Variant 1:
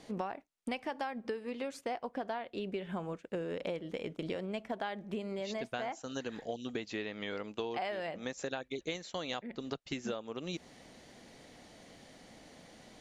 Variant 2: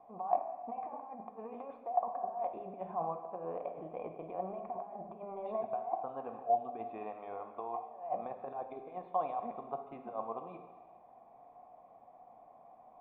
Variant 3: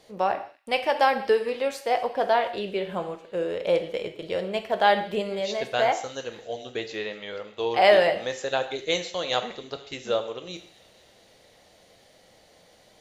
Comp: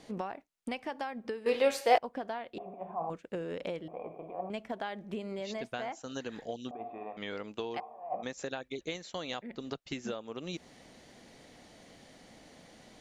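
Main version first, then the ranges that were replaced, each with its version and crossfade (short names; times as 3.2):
1
1.46–1.98 from 3
2.58–3.1 from 2
3.88–4.5 from 2
6.71–7.17 from 2
7.8–8.23 from 2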